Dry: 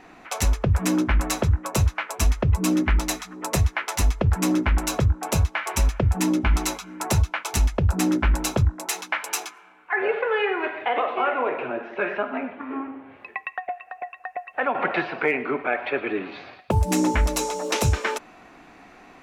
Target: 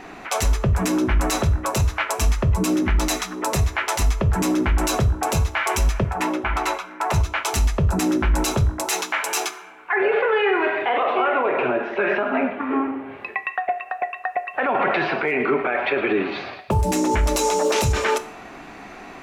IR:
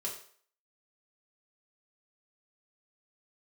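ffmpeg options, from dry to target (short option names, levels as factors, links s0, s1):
-filter_complex "[0:a]asettb=1/sr,asplit=3[s0][s1][s2];[s0]atrim=end=6.044[s3];[s1]atrim=start=6.04:end=7.14,asetpts=PTS-STARTPTS,afade=t=in:d=0.004:c=qsin,afade=t=out:st=1.096:d=0.004:c=qsin,acrossover=split=490 2700:gain=0.158 1 0.158[s4][s5][s6];[s4][s5][s6]amix=inputs=3:normalize=0[s7];[s2]atrim=start=7.136[s8];[s3][s7]acrossfade=d=0.004:c1=hsin:c2=qsin[s9];[s9][s8]acrossfade=d=0.004:c1=qsin:c2=hsin,alimiter=limit=0.0841:level=0:latency=1:release=28,asplit=2[s10][s11];[1:a]atrim=start_sample=2205[s12];[s11][s12]afir=irnorm=-1:irlink=0,volume=0.398[s13];[s10][s13]amix=inputs=2:normalize=0,volume=2.24"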